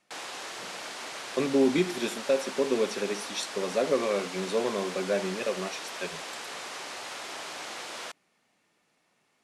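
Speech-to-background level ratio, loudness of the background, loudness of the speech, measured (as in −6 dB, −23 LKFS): 8.0 dB, −37.5 LKFS, −29.5 LKFS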